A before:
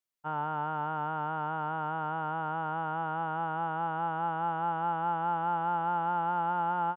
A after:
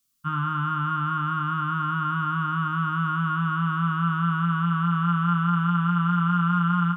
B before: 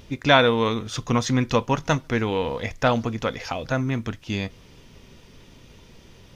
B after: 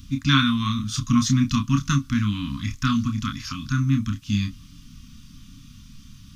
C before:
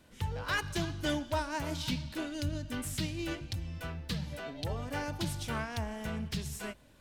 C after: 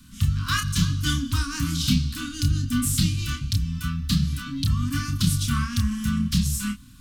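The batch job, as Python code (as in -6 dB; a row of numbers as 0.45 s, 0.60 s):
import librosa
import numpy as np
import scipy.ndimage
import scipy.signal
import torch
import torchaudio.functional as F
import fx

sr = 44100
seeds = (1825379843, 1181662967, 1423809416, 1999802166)

y = scipy.signal.sosfilt(scipy.signal.cheby1(5, 1.0, [280.0, 1100.0], 'bandstop', fs=sr, output='sos'), x)
y = fx.peak_eq(y, sr, hz=1900.0, db=-12.5, octaves=1.1)
y = fx.doubler(y, sr, ms=29.0, db=-5.5)
y = y * 10.0 ** (-24 / 20.0) / np.sqrt(np.mean(np.square(y)))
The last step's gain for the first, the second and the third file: +18.0 dB, +4.5 dB, +14.0 dB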